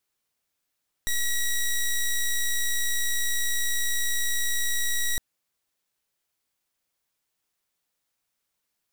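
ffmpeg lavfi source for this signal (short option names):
-f lavfi -i "aevalsrc='0.0596*(2*lt(mod(1920*t,1),0.1)-1)':d=4.11:s=44100"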